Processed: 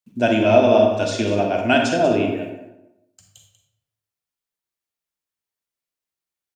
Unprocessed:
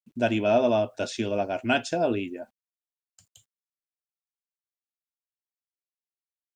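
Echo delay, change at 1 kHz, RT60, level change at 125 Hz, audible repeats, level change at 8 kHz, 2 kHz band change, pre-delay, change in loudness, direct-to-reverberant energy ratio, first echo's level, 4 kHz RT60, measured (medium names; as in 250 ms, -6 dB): 191 ms, +8.0 dB, 0.85 s, +9.0 dB, 1, +7.0 dB, +7.5 dB, 37 ms, +8.0 dB, 1.5 dB, -12.5 dB, 0.60 s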